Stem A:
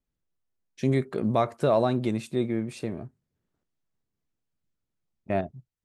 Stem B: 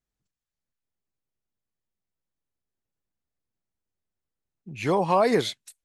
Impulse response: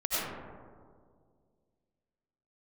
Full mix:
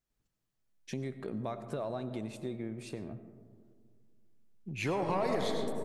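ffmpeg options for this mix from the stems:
-filter_complex "[0:a]acompressor=threshold=0.00794:ratio=2,adelay=100,volume=0.891,asplit=2[s0][s1];[s1]volume=0.0944[s2];[1:a]aeval=exprs='(tanh(5.62*val(0)+0.2)-tanh(0.2))/5.62':c=same,volume=0.708,asplit=2[s3][s4];[s4]volume=0.355[s5];[2:a]atrim=start_sample=2205[s6];[s2][s5]amix=inputs=2:normalize=0[s7];[s7][s6]afir=irnorm=-1:irlink=0[s8];[s0][s3][s8]amix=inputs=3:normalize=0,acompressor=threshold=0.0224:ratio=2.5"

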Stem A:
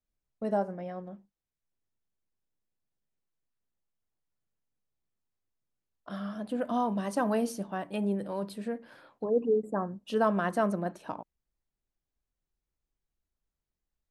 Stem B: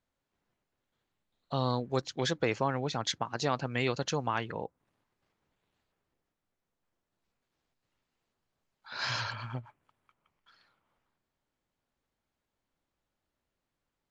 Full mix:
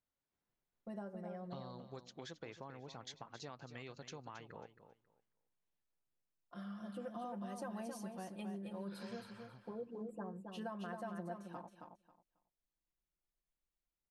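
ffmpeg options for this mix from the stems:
-filter_complex "[0:a]aecho=1:1:5.7:0.83,acompressor=threshold=0.0355:ratio=6,adelay=450,volume=0.224,asplit=2[s0][s1];[s1]volume=0.531[s2];[1:a]acompressor=threshold=0.0141:ratio=4,volume=0.299,afade=t=out:st=4.82:d=0.46:silence=0.398107,asplit=2[s3][s4];[s4]volume=0.266[s5];[s2][s5]amix=inputs=2:normalize=0,aecho=0:1:271|542|813:1|0.19|0.0361[s6];[s0][s3][s6]amix=inputs=3:normalize=0"

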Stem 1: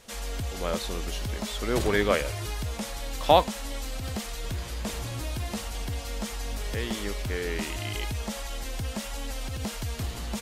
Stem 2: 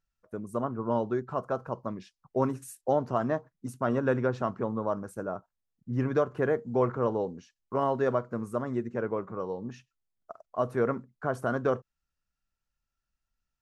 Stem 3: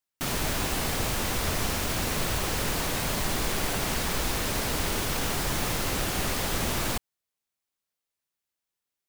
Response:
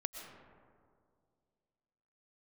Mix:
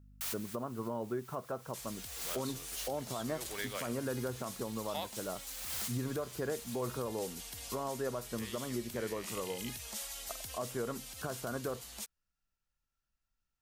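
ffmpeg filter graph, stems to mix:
-filter_complex "[0:a]lowshelf=f=380:g=-9.5,asoftclip=type=tanh:threshold=0.398,crystalizer=i=3.5:c=0,adelay=1650,volume=0.237[s0];[1:a]alimiter=limit=0.126:level=0:latency=1,volume=0.794,asplit=2[s1][s2];[2:a]highpass=1100,highshelf=f=6000:g=11,aeval=exprs='val(0)+0.00562*(sin(2*PI*50*n/s)+sin(2*PI*2*50*n/s)/2+sin(2*PI*3*50*n/s)/3+sin(2*PI*4*50*n/s)/4+sin(2*PI*5*50*n/s)/5)':c=same,volume=0.251[s3];[s2]apad=whole_len=400549[s4];[s3][s4]sidechaincompress=threshold=0.00282:ratio=4:attack=9.2:release=320[s5];[s0][s1][s5]amix=inputs=3:normalize=0,alimiter=level_in=1.33:limit=0.0631:level=0:latency=1:release=398,volume=0.75"

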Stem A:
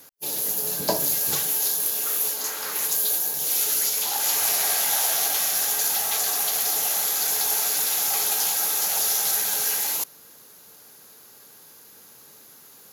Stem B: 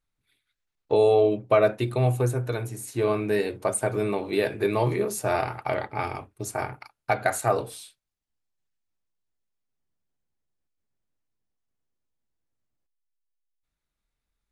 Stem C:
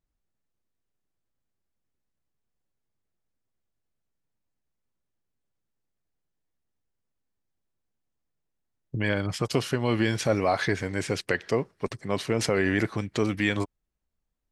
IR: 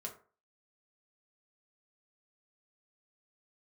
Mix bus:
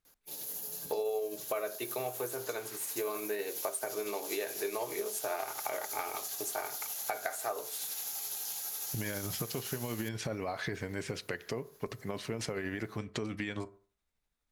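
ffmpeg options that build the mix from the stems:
-filter_complex "[0:a]acrossover=split=180|3000[s0][s1][s2];[s1]acompressor=threshold=0.0141:ratio=6[s3];[s0][s3][s2]amix=inputs=3:normalize=0,adelay=50,volume=0.224[s4];[1:a]highpass=440,volume=0.794,asplit=2[s5][s6];[s6]volume=0.473[s7];[2:a]alimiter=limit=0.188:level=0:latency=1:release=169,volume=0.631,asplit=2[s8][s9];[s9]volume=0.376[s10];[3:a]atrim=start_sample=2205[s11];[s7][s10]amix=inputs=2:normalize=0[s12];[s12][s11]afir=irnorm=-1:irlink=0[s13];[s4][s5][s8][s13]amix=inputs=4:normalize=0,tremolo=f=12:d=0.31,acompressor=threshold=0.0224:ratio=5"

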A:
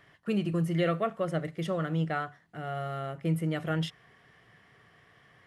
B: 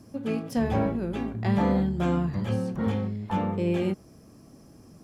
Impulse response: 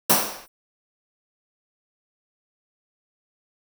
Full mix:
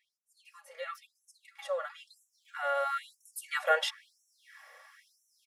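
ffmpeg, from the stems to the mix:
-filter_complex "[0:a]bandreject=f=3000:w=10,volume=0.944,afade=t=in:st=1.9:d=0.7:silence=0.316228,asplit=2[s0][s1];[1:a]acompressor=threshold=0.0178:ratio=6,alimiter=level_in=4.22:limit=0.0631:level=0:latency=1,volume=0.237,adelay=450,volume=0.355[s2];[s1]apad=whole_len=242072[s3];[s2][s3]sidechaincompress=threshold=0.0141:ratio=8:attack=16:release=242[s4];[s0][s4]amix=inputs=2:normalize=0,aecho=1:1:3.6:0.8,dynaudnorm=f=350:g=7:m=2.24,afftfilt=real='re*gte(b*sr/1024,450*pow(5600/450,0.5+0.5*sin(2*PI*1*pts/sr)))':imag='im*gte(b*sr/1024,450*pow(5600/450,0.5+0.5*sin(2*PI*1*pts/sr)))':win_size=1024:overlap=0.75"

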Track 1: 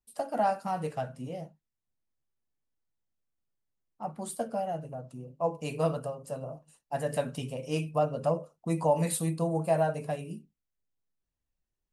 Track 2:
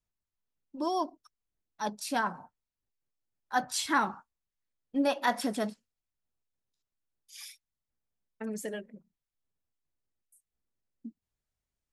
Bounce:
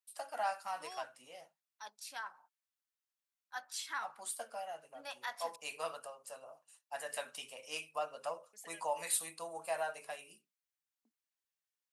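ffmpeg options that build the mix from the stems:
-filter_complex "[0:a]volume=0.944[s0];[1:a]agate=range=0.158:threshold=0.00316:ratio=16:detection=peak,volume=0.335,asplit=3[s1][s2][s3];[s1]atrim=end=5.56,asetpts=PTS-STARTPTS,afade=t=out:st=5.556:d=0.004:c=hsin[s4];[s2]atrim=start=5.56:end=8.53,asetpts=PTS-STARTPTS,volume=0[s5];[s3]atrim=start=8.53,asetpts=PTS-STARTPTS,afade=t=in:d=0.004:c=hsin[s6];[s4][s5][s6]concat=n=3:v=0:a=1[s7];[s0][s7]amix=inputs=2:normalize=0,highpass=1200"

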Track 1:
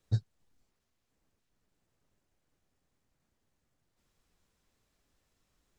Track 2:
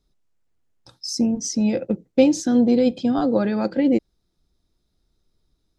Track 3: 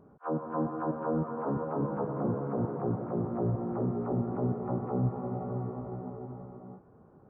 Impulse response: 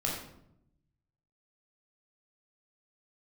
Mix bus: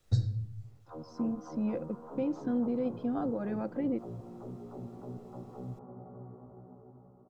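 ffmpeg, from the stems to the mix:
-filter_complex "[0:a]acrossover=split=130|3000[s0][s1][s2];[s1]acompressor=threshold=0.00631:ratio=6[s3];[s0][s3][s2]amix=inputs=3:normalize=0,volume=1.19,asplit=2[s4][s5];[s5]volume=0.501[s6];[1:a]lowpass=1800,alimiter=limit=0.251:level=0:latency=1:release=137,volume=0.251[s7];[2:a]lowpass=1500,adelay=650,volume=0.224[s8];[3:a]atrim=start_sample=2205[s9];[s6][s9]afir=irnorm=-1:irlink=0[s10];[s4][s7][s8][s10]amix=inputs=4:normalize=0"

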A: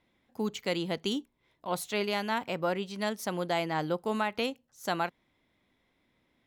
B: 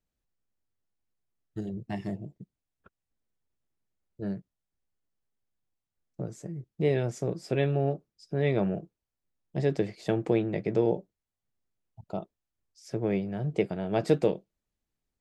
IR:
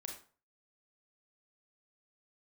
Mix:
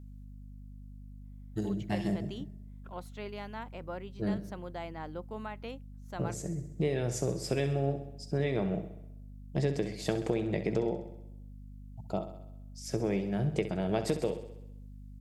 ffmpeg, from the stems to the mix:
-filter_complex "[0:a]highshelf=f=3400:g=-11.5,adelay=1250,volume=0.316[s0];[1:a]aemphasis=mode=production:type=cd,acompressor=threshold=0.0398:ratio=10,volume=1.26,asplit=2[s1][s2];[s2]volume=0.282,aecho=0:1:65|130|195|260|325|390|455|520|585:1|0.58|0.336|0.195|0.113|0.0656|0.0381|0.0221|0.0128[s3];[s0][s1][s3]amix=inputs=3:normalize=0,aeval=exprs='val(0)+0.00501*(sin(2*PI*50*n/s)+sin(2*PI*2*50*n/s)/2+sin(2*PI*3*50*n/s)/3+sin(2*PI*4*50*n/s)/4+sin(2*PI*5*50*n/s)/5)':c=same"

